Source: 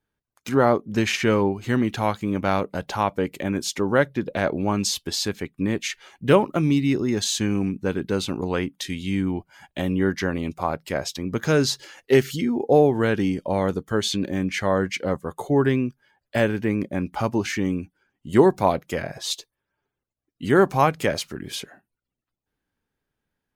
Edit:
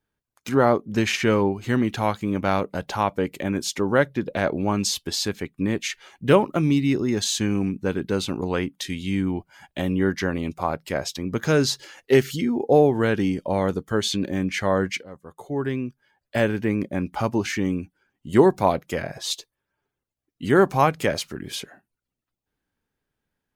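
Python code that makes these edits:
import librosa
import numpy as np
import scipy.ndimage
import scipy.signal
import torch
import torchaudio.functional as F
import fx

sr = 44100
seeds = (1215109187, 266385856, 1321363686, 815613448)

y = fx.edit(x, sr, fx.fade_in_from(start_s=15.03, length_s=1.48, floor_db=-20.0), tone=tone)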